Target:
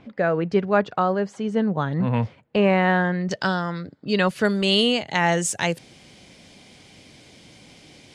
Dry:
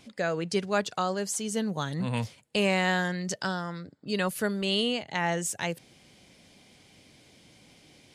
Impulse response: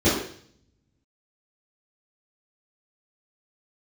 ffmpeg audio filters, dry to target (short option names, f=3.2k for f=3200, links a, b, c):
-af "asetnsamples=n=441:p=0,asendcmd='3.31 lowpass f 4400;4.45 lowpass f 9500',lowpass=1.7k,volume=8dB"